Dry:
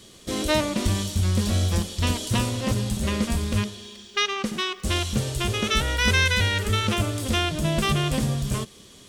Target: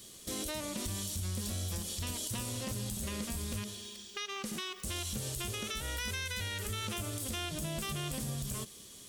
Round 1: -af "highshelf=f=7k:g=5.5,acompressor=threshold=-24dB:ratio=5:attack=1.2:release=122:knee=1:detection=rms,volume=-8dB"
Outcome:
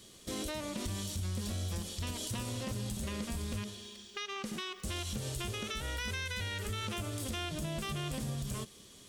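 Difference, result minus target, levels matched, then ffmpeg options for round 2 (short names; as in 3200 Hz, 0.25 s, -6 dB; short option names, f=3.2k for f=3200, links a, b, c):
8000 Hz band -3.5 dB
-af "highshelf=f=7k:g=16.5,acompressor=threshold=-24dB:ratio=5:attack=1.2:release=122:knee=1:detection=rms,volume=-8dB"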